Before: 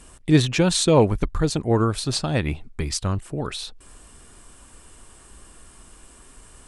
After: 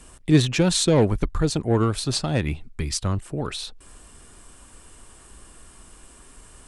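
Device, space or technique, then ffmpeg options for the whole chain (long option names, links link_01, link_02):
one-band saturation: -filter_complex "[0:a]acrossover=split=400|4000[link_01][link_02][link_03];[link_02]asoftclip=type=tanh:threshold=-19dB[link_04];[link_01][link_04][link_03]amix=inputs=3:normalize=0,asettb=1/sr,asplit=3[link_05][link_06][link_07];[link_05]atrim=end=2.454[link_08];[link_06]atrim=start=2.45:end=2.94,asetpts=PTS-STARTPTS,afade=type=in:duration=0.004:curve=qsin,afade=type=out:start_time=0.486:duration=0.004:curve=qsin,equalizer=frequency=670:width=0.77:gain=-5.5[link_09];[link_07]atrim=start=2.936[link_10];[link_08][link_09]acrossfade=duration=0.004:curve1=hsin:curve2=qsin[link_11];[link_11][link_10]acrossfade=duration=0.004:curve1=qsin:curve2=hsin"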